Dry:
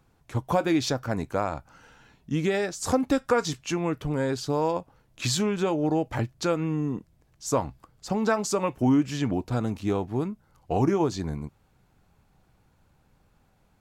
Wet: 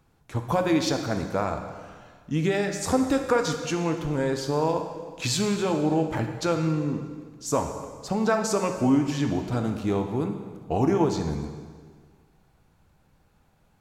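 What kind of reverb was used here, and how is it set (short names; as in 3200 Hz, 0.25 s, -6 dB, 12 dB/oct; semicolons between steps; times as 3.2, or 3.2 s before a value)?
plate-style reverb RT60 1.7 s, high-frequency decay 0.9×, DRR 5 dB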